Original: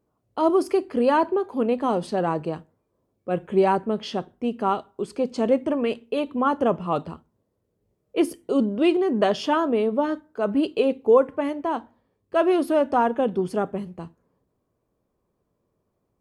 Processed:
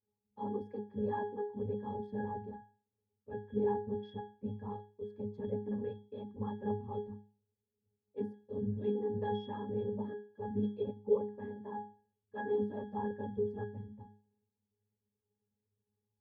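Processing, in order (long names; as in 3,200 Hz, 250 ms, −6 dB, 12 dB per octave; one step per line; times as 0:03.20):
random phases in short frames
resonances in every octave G#, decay 0.38 s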